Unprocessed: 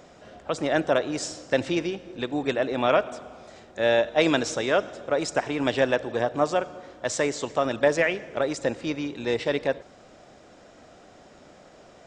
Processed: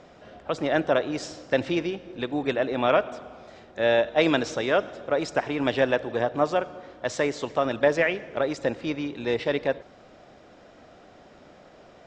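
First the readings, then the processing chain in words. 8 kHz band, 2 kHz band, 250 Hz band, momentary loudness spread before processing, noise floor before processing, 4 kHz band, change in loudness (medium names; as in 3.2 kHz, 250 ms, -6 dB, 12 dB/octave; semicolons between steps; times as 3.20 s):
-7.5 dB, 0.0 dB, 0.0 dB, 11 LU, -52 dBFS, -1.5 dB, 0.0 dB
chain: low-pass 4.7 kHz 12 dB/octave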